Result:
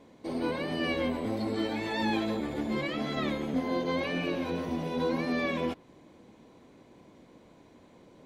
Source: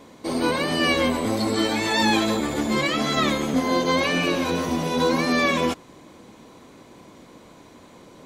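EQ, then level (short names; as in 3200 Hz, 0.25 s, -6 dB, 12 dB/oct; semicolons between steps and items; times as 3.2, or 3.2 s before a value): high shelf 3900 Hz -10.5 dB; dynamic EQ 7000 Hz, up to -7 dB, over -52 dBFS, Q 1.5; bell 1200 Hz -5.5 dB 0.69 oct; -7.5 dB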